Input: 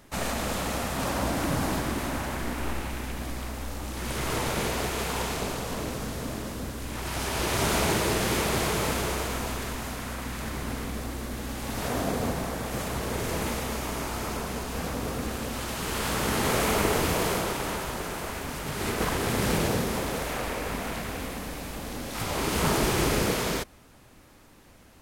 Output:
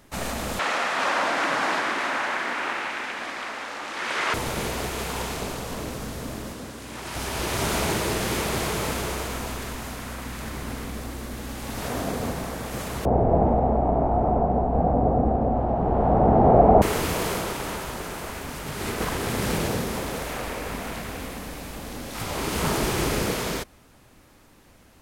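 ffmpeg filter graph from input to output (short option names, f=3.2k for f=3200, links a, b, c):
-filter_complex "[0:a]asettb=1/sr,asplit=3[a][b][c];[a]atrim=end=0.594[d];[b]atrim=start=0.59:end=4.34,asetpts=PTS-STARTPTS,afade=t=in:d=0.004:c=qsin,afade=t=out:st=3.746:d=0.004:c=qsin,highpass=360,lowpass=6.8k,equalizer=f=1.7k:w=0.55:g=11.5[e];[c]atrim=start=4.336[f];[d][e]acrossfade=d=0.004:c1=hsin:c2=qsin[g];[g][f]acrossfade=d=0.004:c1=qsin:c2=hsin,asettb=1/sr,asplit=3[h][i][j];[h]atrim=end=6.534[k];[i]atrim=start=6.53:end=7.15,asetpts=PTS-STARTPTS,afade=t=in:d=0.004:c=qsin,afade=t=out:st=0.616:d=0.004:c=qsin,highpass=f=170:p=1,equalizer=f=14k:w=1.3:g=-6.5[l];[j]atrim=start=7.146[m];[k][l]acrossfade=d=0.004:c1=hsin:c2=qsin[n];[n][m]acrossfade=d=0.004:c1=qsin:c2=hsin,asettb=1/sr,asplit=3[o][p][q];[o]atrim=end=13.054[r];[p]atrim=start=13.05:end=16.82,asetpts=PTS-STARTPTS,afade=t=in:d=0.004:c=qsin,afade=t=out:st=3.766:d=0.004:c=qsin,lowpass=f=730:t=q:w=6.7,lowshelf=f=460:g=11[s];[q]atrim=start=16.816[t];[r][s]acrossfade=d=0.004:c1=hsin:c2=qsin[u];[u][t]acrossfade=d=0.004:c1=qsin:c2=hsin"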